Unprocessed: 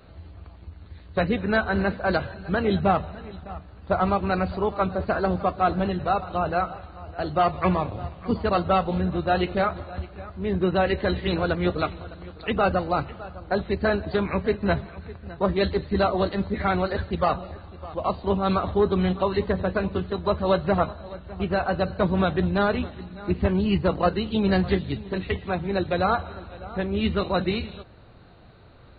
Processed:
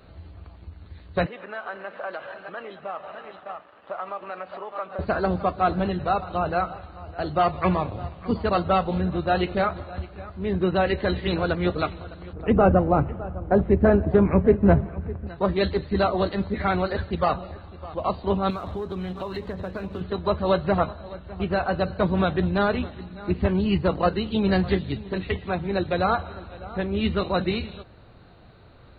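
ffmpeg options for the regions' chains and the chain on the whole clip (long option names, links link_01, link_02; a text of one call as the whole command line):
ffmpeg -i in.wav -filter_complex "[0:a]asettb=1/sr,asplit=3[link_01][link_02][link_03];[link_01]atrim=end=1.264[link_04];[link_02]atrim=start=1.26:end=4.99,asetpts=PTS-STARTPTS,afade=type=in:duration=0.004:curve=qsin,afade=type=out:start_time=3.726:duration=0.004:curve=qsin,acompressor=threshold=-31dB:ratio=10:attack=3.2:release=140:knee=1:detection=peak,aeval=exprs='sgn(val(0))*max(abs(val(0))-0.00211,0)':channel_layout=same,highpass=400,equalizer=frequency=590:width_type=q:width=4:gain=7,equalizer=frequency=850:width_type=q:width=4:gain=3,equalizer=frequency=1200:width_type=q:width=4:gain=8,equalizer=frequency=1800:width_type=q:width=4:gain=5,equalizer=frequency=2900:width_type=q:width=4:gain=5,lowpass=frequency=3600:width=0.5412,lowpass=frequency=3600:width=1.3066[link_05];[link_03]atrim=start=4.986[link_06];[link_04][link_05]acrossfade=duration=0.004:curve1=hsin:curve2=qsin[link_07];[link_07][link_06]acrossfade=duration=0.004:curve1=qsin:curve2=hsin,asettb=1/sr,asplit=3[link_08][link_09][link_10];[link_08]atrim=end=12.334[link_11];[link_09]atrim=start=12.33:end=15.27,asetpts=PTS-STARTPTS,afade=type=in:duration=0.004:curve=qsin,afade=type=out:start_time=2.936:duration=0.004:curve=qsin,lowpass=frequency=2900:width=0.5412,lowpass=frequency=2900:width=1.3066,tiltshelf=frequency=1100:gain=8.5[link_12];[link_10]atrim=start=15.266[link_13];[link_11][link_12]acrossfade=duration=0.004:curve1=hsin:curve2=qsin[link_14];[link_14][link_13]acrossfade=duration=0.004:curve1=qsin:curve2=hsin,asettb=1/sr,asplit=3[link_15][link_16][link_17];[link_15]atrim=end=18.504[link_18];[link_16]atrim=start=18.5:end=20.01,asetpts=PTS-STARTPTS,afade=type=in:duration=0.004:curve=qsin,afade=type=out:start_time=1.506:duration=0.004:curve=qsin,acompressor=threshold=-27dB:ratio=6:attack=3.2:release=140:knee=1:detection=peak,aeval=exprs='sgn(val(0))*max(abs(val(0))-0.00211,0)':channel_layout=same[link_19];[link_17]atrim=start=20.006[link_20];[link_18][link_19]acrossfade=duration=0.004:curve1=hsin:curve2=qsin[link_21];[link_21][link_20]acrossfade=duration=0.004:curve1=qsin:curve2=hsin" out.wav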